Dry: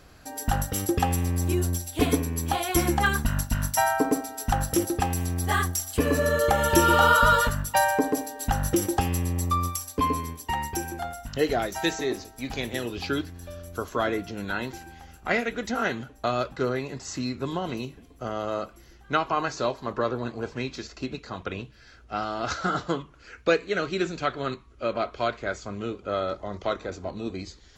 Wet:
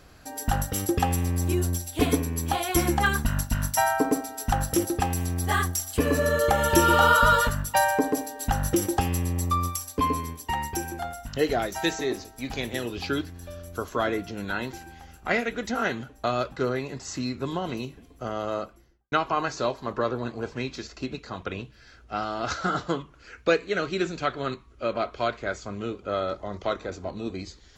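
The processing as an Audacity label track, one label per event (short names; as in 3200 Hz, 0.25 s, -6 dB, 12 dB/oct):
18.530000	19.120000	studio fade out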